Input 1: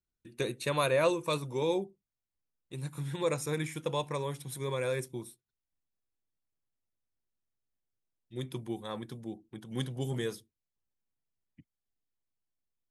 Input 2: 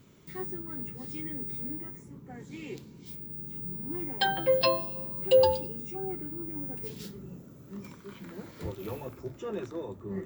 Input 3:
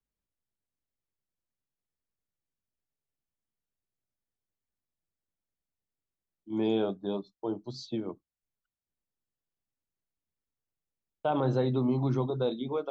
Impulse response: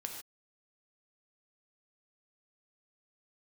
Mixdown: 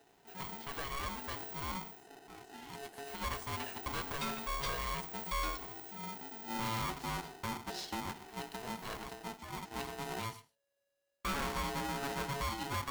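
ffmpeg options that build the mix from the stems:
-filter_complex "[0:a]acrossover=split=4300[link_01][link_02];[link_02]acompressor=threshold=-53dB:ratio=4:attack=1:release=60[link_03];[link_01][link_03]amix=inputs=2:normalize=0,equalizer=frequency=180:width_type=o:width=0.71:gain=-12.5,dynaudnorm=framelen=370:gausssize=13:maxgain=9dB,volume=-12.5dB,asplit=2[link_04][link_05];[link_05]volume=-9dB[link_06];[1:a]flanger=delay=6.7:depth=9.6:regen=-57:speed=0.23:shape=sinusoidal,volume=-4dB[link_07];[2:a]acrossover=split=490|3000[link_08][link_09][link_10];[link_08]acompressor=threshold=-39dB:ratio=6[link_11];[link_11][link_09][link_10]amix=inputs=3:normalize=0,volume=-1dB,asplit=2[link_12][link_13];[link_13]volume=-4dB[link_14];[3:a]atrim=start_sample=2205[link_15];[link_06][link_14]amix=inputs=2:normalize=0[link_16];[link_16][link_15]afir=irnorm=-1:irlink=0[link_17];[link_04][link_07][link_12][link_17]amix=inputs=4:normalize=0,aeval=exprs='(tanh(44.7*val(0)+0.25)-tanh(0.25))/44.7':channel_layout=same,aeval=exprs='val(0)*sgn(sin(2*PI*560*n/s))':channel_layout=same"

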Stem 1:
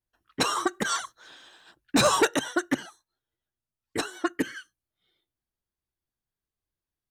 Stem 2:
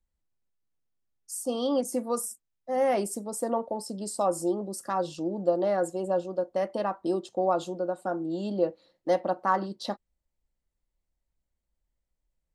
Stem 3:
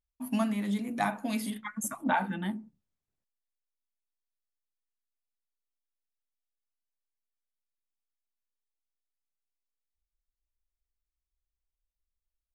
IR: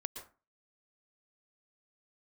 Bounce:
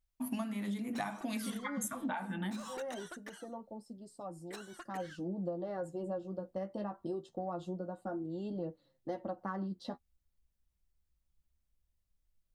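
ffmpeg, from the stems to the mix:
-filter_complex "[0:a]highpass=590,acompressor=threshold=-29dB:ratio=3,asoftclip=type=tanh:threshold=-27.5dB,adelay=550,volume=-12.5dB[link_01];[1:a]bass=frequency=250:gain=13,treble=frequency=4000:gain=-6,bandreject=frequency=2400:width=6.8,flanger=delay=6.4:depth=9.7:regen=22:speed=0.23:shape=triangular,volume=-6.5dB,afade=type=in:start_time=4.69:duration=0.52:silence=0.354813[link_02];[2:a]bandreject=frequency=104.6:width_type=h:width=4,bandreject=frequency=209.2:width_type=h:width=4,bandreject=frequency=313.8:width_type=h:width=4,bandreject=frequency=418.4:width_type=h:width=4,bandreject=frequency=523:width_type=h:width=4,bandreject=frequency=627.6:width_type=h:width=4,bandreject=frequency=732.2:width_type=h:width=4,bandreject=frequency=836.8:width_type=h:width=4,bandreject=frequency=941.4:width_type=h:width=4,bandreject=frequency=1046:width_type=h:width=4,bandreject=frequency=1150.6:width_type=h:width=4,bandreject=frequency=1255.2:width_type=h:width=4,bandreject=frequency=1359.8:width_type=h:width=4,bandreject=frequency=1464.4:width_type=h:width=4,bandreject=frequency=1569:width_type=h:width=4,bandreject=frequency=1673.6:width_type=h:width=4,bandreject=frequency=1778.2:width_type=h:width=4,bandreject=frequency=1882.8:width_type=h:width=4,bandreject=frequency=1987.4:width_type=h:width=4,bandreject=frequency=2092:width_type=h:width=4,bandreject=frequency=2196.6:width_type=h:width=4,bandreject=frequency=2301.2:width_type=h:width=4,bandreject=frequency=2405.8:width_type=h:width=4,bandreject=frequency=2510.4:width_type=h:width=4,bandreject=frequency=2615:width_type=h:width=4,volume=2.5dB[link_03];[link_01][link_02][link_03]amix=inputs=3:normalize=0,acompressor=threshold=-34dB:ratio=12"

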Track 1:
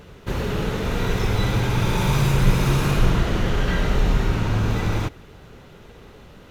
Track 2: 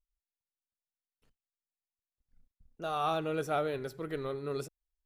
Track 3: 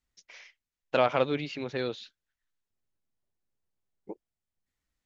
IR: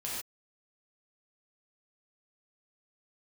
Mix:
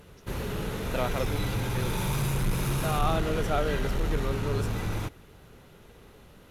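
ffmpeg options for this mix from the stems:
-filter_complex "[0:a]equalizer=frequency=11000:width_type=o:width=0.64:gain=12,asoftclip=type=tanh:threshold=-12.5dB,volume=-7.5dB[link_01];[1:a]volume=2.5dB[link_02];[2:a]volume=-7dB[link_03];[link_01][link_02][link_03]amix=inputs=3:normalize=0"

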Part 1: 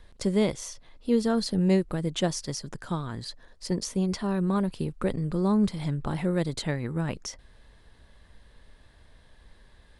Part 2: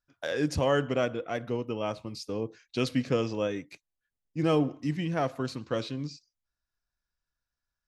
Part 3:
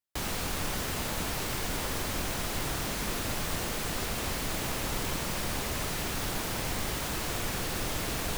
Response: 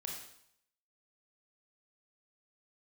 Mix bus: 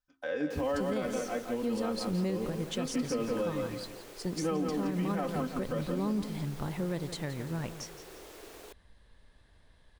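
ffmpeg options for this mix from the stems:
-filter_complex "[0:a]adelay=550,volume=-6.5dB,asplit=2[link_01][link_02];[link_02]volume=-12.5dB[link_03];[1:a]acrossover=split=2600[link_04][link_05];[link_05]acompressor=threshold=-56dB:ratio=4:attack=1:release=60[link_06];[link_04][link_06]amix=inputs=2:normalize=0,aecho=1:1:3.9:0.79,bandreject=frequency=67.05:width_type=h:width=4,bandreject=frequency=134.1:width_type=h:width=4,bandreject=frequency=201.15:width_type=h:width=4,bandreject=frequency=268.2:width_type=h:width=4,bandreject=frequency=335.25:width_type=h:width=4,bandreject=frequency=402.3:width_type=h:width=4,volume=-5dB,asplit=2[link_07][link_08];[link_08]volume=-5.5dB[link_09];[2:a]highpass=frequency=390:width_type=q:width=3.4,adelay=350,volume=-18dB[link_10];[link_03][link_09]amix=inputs=2:normalize=0,aecho=0:1:171|342|513|684|855:1|0.36|0.13|0.0467|0.0168[link_11];[link_01][link_07][link_10][link_11]amix=inputs=4:normalize=0,alimiter=limit=-23dB:level=0:latency=1:release=79"

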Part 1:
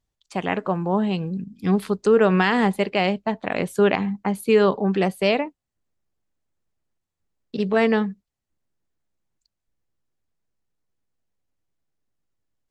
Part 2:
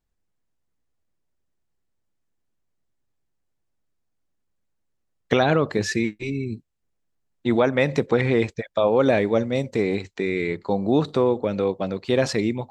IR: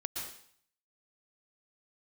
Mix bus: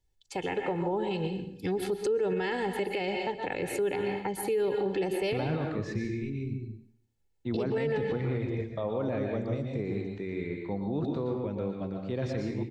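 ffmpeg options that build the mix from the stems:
-filter_complex "[0:a]equalizer=frequency=1200:width_type=o:width=0.3:gain=-14,aecho=1:1:2.3:0.74,volume=-5.5dB,asplit=3[link_01][link_02][link_03];[link_02]volume=-4dB[link_04];[1:a]aemphasis=mode=reproduction:type=bsi,volume=-11.5dB,asplit=2[link_05][link_06];[link_06]volume=-4dB[link_07];[link_03]apad=whole_len=560328[link_08];[link_05][link_08]sidechaingate=range=-14dB:threshold=-43dB:ratio=16:detection=peak[link_09];[2:a]atrim=start_sample=2205[link_10];[link_04][link_07]amix=inputs=2:normalize=0[link_11];[link_11][link_10]afir=irnorm=-1:irlink=0[link_12];[link_01][link_09][link_12]amix=inputs=3:normalize=0,acrossover=split=380[link_13][link_14];[link_14]acompressor=threshold=-27dB:ratio=2.5[link_15];[link_13][link_15]amix=inputs=2:normalize=0,alimiter=limit=-22dB:level=0:latency=1:release=93"

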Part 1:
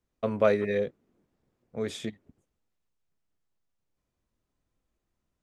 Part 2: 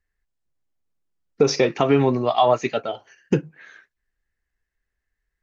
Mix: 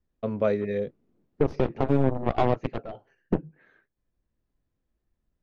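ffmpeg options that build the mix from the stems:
ffmpeg -i stem1.wav -i stem2.wav -filter_complex "[0:a]crystalizer=i=8:c=0,volume=-8dB[link_01];[1:a]aeval=exprs='0.562*(cos(1*acos(clip(val(0)/0.562,-1,1)))-cos(1*PI/2))+0.0891*(cos(3*acos(clip(val(0)/0.562,-1,1)))-cos(3*PI/2))+0.0562*(cos(4*acos(clip(val(0)/0.562,-1,1)))-cos(4*PI/2))+0.0355*(cos(5*acos(clip(val(0)/0.562,-1,1)))-cos(5*PI/2))+0.112*(cos(7*acos(clip(val(0)/0.562,-1,1)))-cos(7*PI/2))':channel_layout=same,volume=-5.5dB,asplit=2[link_02][link_03];[link_03]apad=whole_len=239087[link_04];[link_01][link_04]sidechaincompress=threshold=-28dB:ratio=3:attack=16:release=1080[link_05];[link_05][link_02]amix=inputs=2:normalize=0,lowpass=3900,tiltshelf=frequency=970:gain=10,alimiter=limit=-10dB:level=0:latency=1:release=158" out.wav

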